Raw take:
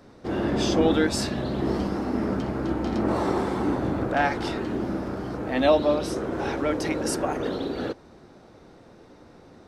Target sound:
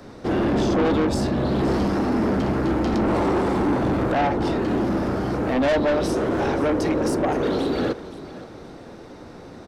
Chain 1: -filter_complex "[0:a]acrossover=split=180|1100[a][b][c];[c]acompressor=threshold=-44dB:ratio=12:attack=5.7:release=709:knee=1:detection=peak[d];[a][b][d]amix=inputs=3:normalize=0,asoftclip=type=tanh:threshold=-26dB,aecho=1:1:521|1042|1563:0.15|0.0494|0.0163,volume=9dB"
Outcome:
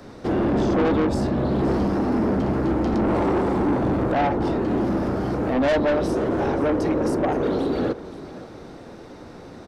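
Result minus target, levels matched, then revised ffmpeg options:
compressor: peak gain reduction +6.5 dB
-filter_complex "[0:a]acrossover=split=180|1100[a][b][c];[c]acompressor=threshold=-37dB:ratio=12:attack=5.7:release=709:knee=1:detection=peak[d];[a][b][d]amix=inputs=3:normalize=0,asoftclip=type=tanh:threshold=-26dB,aecho=1:1:521|1042|1563:0.15|0.0494|0.0163,volume=9dB"

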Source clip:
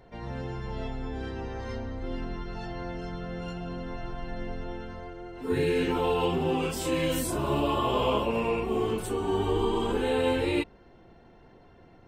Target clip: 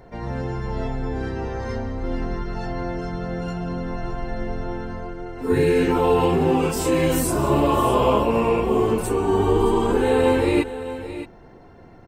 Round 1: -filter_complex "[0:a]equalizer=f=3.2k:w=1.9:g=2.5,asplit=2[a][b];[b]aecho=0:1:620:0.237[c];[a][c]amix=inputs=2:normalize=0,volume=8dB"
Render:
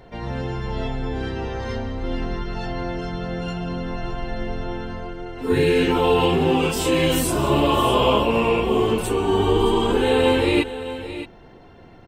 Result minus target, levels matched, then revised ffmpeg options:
4000 Hz band +8.0 dB
-filter_complex "[0:a]equalizer=f=3.2k:w=1.9:g=-8,asplit=2[a][b];[b]aecho=0:1:620:0.237[c];[a][c]amix=inputs=2:normalize=0,volume=8dB"

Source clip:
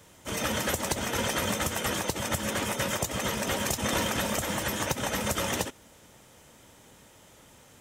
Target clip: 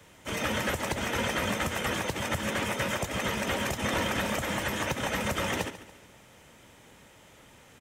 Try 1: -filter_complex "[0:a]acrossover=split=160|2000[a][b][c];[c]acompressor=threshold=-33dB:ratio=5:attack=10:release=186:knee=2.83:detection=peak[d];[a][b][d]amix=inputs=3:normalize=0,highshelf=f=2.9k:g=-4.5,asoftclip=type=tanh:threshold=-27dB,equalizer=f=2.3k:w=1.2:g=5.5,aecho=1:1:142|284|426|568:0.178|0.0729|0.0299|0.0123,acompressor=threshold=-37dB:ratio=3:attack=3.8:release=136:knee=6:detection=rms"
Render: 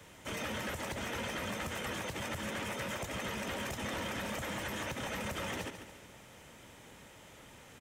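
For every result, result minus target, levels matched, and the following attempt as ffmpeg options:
compressor: peak gain reduction +8 dB; soft clip: distortion +11 dB
-filter_complex "[0:a]acrossover=split=160|2000[a][b][c];[c]acompressor=threshold=-33dB:ratio=5:attack=10:release=186:knee=2.83:detection=peak[d];[a][b][d]amix=inputs=3:normalize=0,highshelf=f=2.9k:g=-4.5,asoftclip=type=tanh:threshold=-27dB,equalizer=f=2.3k:w=1.2:g=5.5,aecho=1:1:142|284|426|568:0.178|0.0729|0.0299|0.0123"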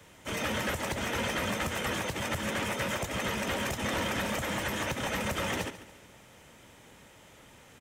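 soft clip: distortion +11 dB
-filter_complex "[0:a]acrossover=split=160|2000[a][b][c];[c]acompressor=threshold=-33dB:ratio=5:attack=10:release=186:knee=2.83:detection=peak[d];[a][b][d]amix=inputs=3:normalize=0,highshelf=f=2.9k:g=-4.5,asoftclip=type=tanh:threshold=-18.5dB,equalizer=f=2.3k:w=1.2:g=5.5,aecho=1:1:142|284|426|568:0.178|0.0729|0.0299|0.0123"

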